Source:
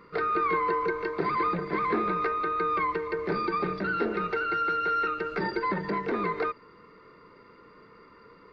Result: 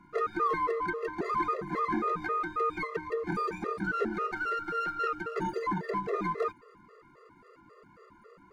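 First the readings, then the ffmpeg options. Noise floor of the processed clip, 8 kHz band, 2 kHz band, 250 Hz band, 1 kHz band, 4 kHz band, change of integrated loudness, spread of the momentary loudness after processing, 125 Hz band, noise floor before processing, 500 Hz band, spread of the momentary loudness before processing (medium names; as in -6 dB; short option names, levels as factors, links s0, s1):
-59 dBFS, no reading, -4.0 dB, -3.0 dB, -3.5 dB, -6.0 dB, -3.5 dB, 4 LU, -3.0 dB, -54 dBFS, -3.5 dB, 4 LU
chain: -filter_complex "[0:a]acrossover=split=120|770|2300[s0][s1][s2][s3];[s3]aeval=exprs='max(val(0),0)':c=same[s4];[s0][s1][s2][s4]amix=inputs=4:normalize=0,afftfilt=real='re*gt(sin(2*PI*3.7*pts/sr)*(1-2*mod(floor(b*sr/1024/350),2)),0)':imag='im*gt(sin(2*PI*3.7*pts/sr)*(1-2*mod(floor(b*sr/1024/350),2)),0)':win_size=1024:overlap=0.75"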